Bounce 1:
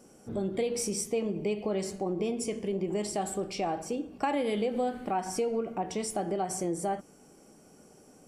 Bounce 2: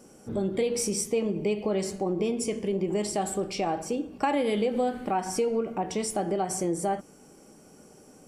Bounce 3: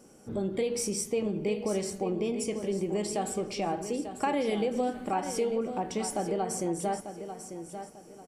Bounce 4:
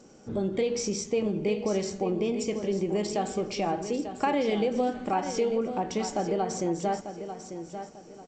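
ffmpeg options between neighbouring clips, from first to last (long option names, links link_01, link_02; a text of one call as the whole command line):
ffmpeg -i in.wav -af "bandreject=frequency=700:width=17,volume=3.5dB" out.wav
ffmpeg -i in.wav -af "aecho=1:1:894|1788|2682:0.316|0.0949|0.0285,volume=-3dB" out.wav
ffmpeg -i in.wav -af "volume=2.5dB" -ar 16000 -c:a g722 out.g722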